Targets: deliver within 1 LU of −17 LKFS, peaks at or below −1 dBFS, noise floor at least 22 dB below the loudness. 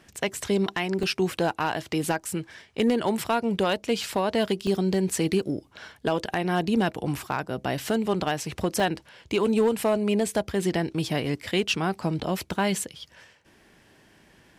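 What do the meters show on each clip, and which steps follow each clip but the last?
share of clipped samples 0.4%; peaks flattened at −15.5 dBFS; number of dropouts 3; longest dropout 1.9 ms; integrated loudness −26.5 LKFS; sample peak −15.5 dBFS; target loudness −17.0 LKFS
→ clipped peaks rebuilt −15.5 dBFS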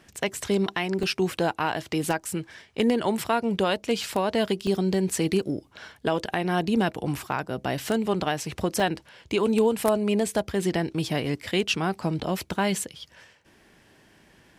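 share of clipped samples 0.0%; number of dropouts 3; longest dropout 1.9 ms
→ repair the gap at 0:01.03/0:04.67/0:08.80, 1.9 ms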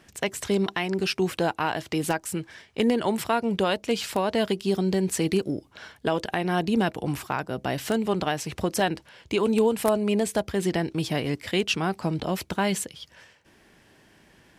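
number of dropouts 0; integrated loudness −26.5 LKFS; sample peak −6.5 dBFS; target loudness −17.0 LKFS
→ level +9.5 dB
brickwall limiter −1 dBFS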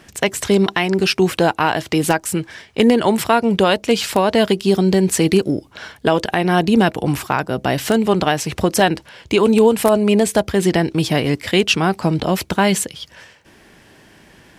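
integrated loudness −17.0 LKFS; sample peak −1.0 dBFS; background noise floor −49 dBFS

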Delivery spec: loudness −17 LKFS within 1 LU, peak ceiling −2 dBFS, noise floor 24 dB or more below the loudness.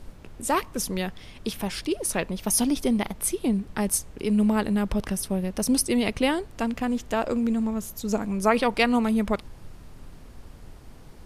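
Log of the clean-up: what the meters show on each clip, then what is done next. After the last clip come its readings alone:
background noise floor −47 dBFS; target noise floor −50 dBFS; integrated loudness −25.5 LKFS; sample peak −7.0 dBFS; target loudness −17.0 LKFS
→ noise reduction from a noise print 6 dB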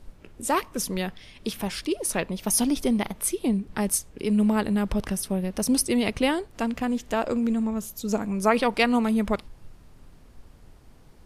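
background noise floor −52 dBFS; integrated loudness −25.5 LKFS; sample peak −7.5 dBFS; target loudness −17.0 LKFS
→ level +8.5 dB
brickwall limiter −2 dBFS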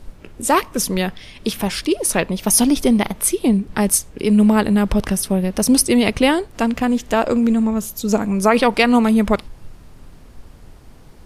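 integrated loudness −17.5 LKFS; sample peak −2.0 dBFS; background noise floor −43 dBFS

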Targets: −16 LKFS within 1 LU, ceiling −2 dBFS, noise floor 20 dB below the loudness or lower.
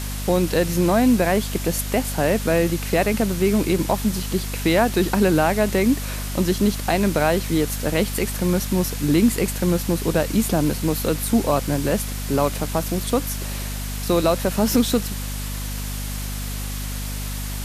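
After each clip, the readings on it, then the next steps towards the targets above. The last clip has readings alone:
mains hum 50 Hz; hum harmonics up to 250 Hz; level of the hum −26 dBFS; background noise floor −28 dBFS; target noise floor −42 dBFS; integrated loudness −21.5 LKFS; sample peak −5.0 dBFS; target loudness −16.0 LKFS
→ hum removal 50 Hz, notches 5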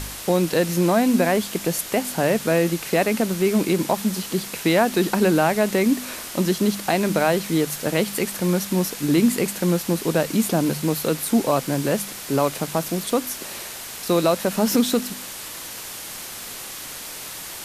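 mains hum none found; background noise floor −35 dBFS; target noise floor −42 dBFS
→ broadband denoise 7 dB, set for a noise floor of −35 dBFS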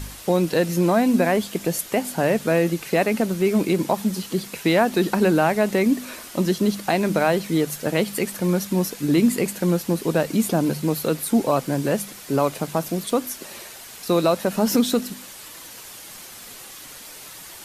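background noise floor −41 dBFS; target noise floor −42 dBFS
→ broadband denoise 6 dB, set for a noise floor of −41 dBFS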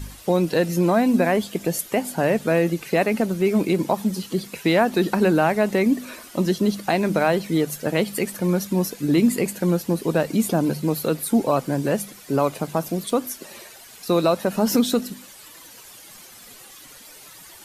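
background noise floor −45 dBFS; integrated loudness −22.0 LKFS; sample peak −6.0 dBFS; target loudness −16.0 LKFS
→ level +6 dB
brickwall limiter −2 dBFS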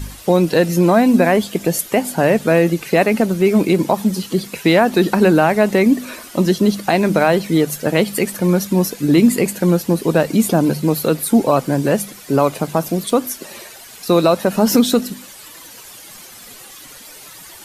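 integrated loudness −16.0 LKFS; sample peak −2.0 dBFS; background noise floor −39 dBFS

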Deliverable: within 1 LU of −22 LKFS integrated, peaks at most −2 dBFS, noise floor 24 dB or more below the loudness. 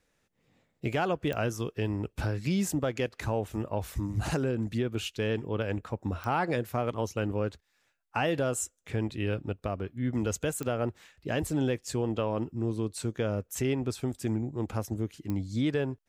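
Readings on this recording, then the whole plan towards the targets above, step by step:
number of clicks 4; integrated loudness −32.0 LKFS; sample peak −15.5 dBFS; target loudness −22.0 LKFS
→ click removal
level +10 dB

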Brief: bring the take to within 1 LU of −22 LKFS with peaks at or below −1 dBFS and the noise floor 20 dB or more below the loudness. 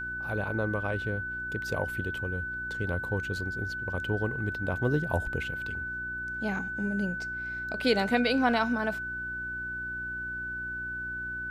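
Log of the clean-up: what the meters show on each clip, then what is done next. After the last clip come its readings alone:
mains hum 60 Hz; hum harmonics up to 360 Hz; level of the hum −43 dBFS; interfering tone 1,500 Hz; level of the tone −33 dBFS; integrated loudness −31.0 LKFS; sample peak −11.5 dBFS; target loudness −22.0 LKFS
→ hum removal 60 Hz, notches 6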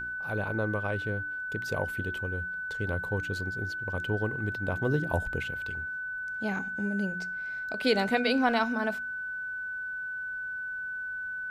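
mains hum none found; interfering tone 1,500 Hz; level of the tone −33 dBFS
→ notch filter 1,500 Hz, Q 30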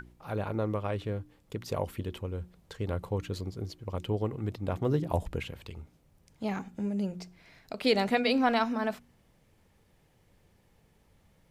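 interfering tone none found; integrated loudness −32.5 LKFS; sample peak −12.5 dBFS; target loudness −22.0 LKFS
→ level +10.5 dB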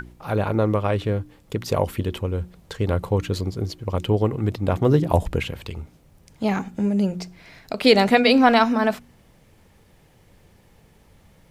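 integrated loudness −22.0 LKFS; sample peak −2.0 dBFS; background noise floor −56 dBFS

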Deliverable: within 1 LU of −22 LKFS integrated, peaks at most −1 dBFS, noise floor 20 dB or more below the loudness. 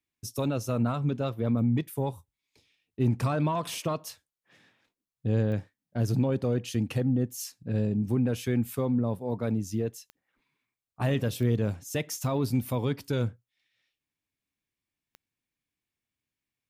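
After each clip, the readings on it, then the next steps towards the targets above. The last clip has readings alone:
number of clicks 4; integrated loudness −29.5 LKFS; sample peak −15.0 dBFS; target loudness −22.0 LKFS
→ click removal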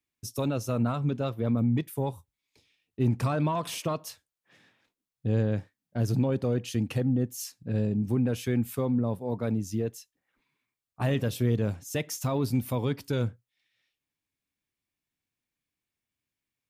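number of clicks 0; integrated loudness −29.5 LKFS; sample peak −15.0 dBFS; target loudness −22.0 LKFS
→ level +7.5 dB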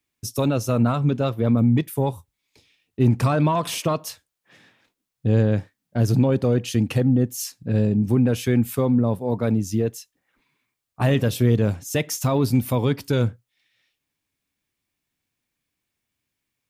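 integrated loudness −22.0 LKFS; sample peak −7.5 dBFS; background noise floor −81 dBFS

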